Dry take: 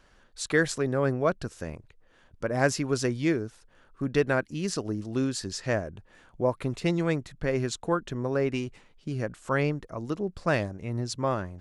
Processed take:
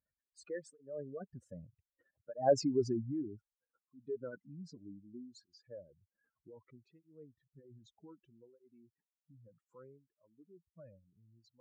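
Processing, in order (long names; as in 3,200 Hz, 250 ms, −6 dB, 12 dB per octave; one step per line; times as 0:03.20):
expanding power law on the bin magnitudes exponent 2.9
source passing by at 0:02.53, 21 m/s, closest 6.5 metres
high-pass filter 77 Hz
parametric band 5,400 Hz −4 dB 1.8 octaves
through-zero flanger with one copy inverted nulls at 0.64 Hz, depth 2.8 ms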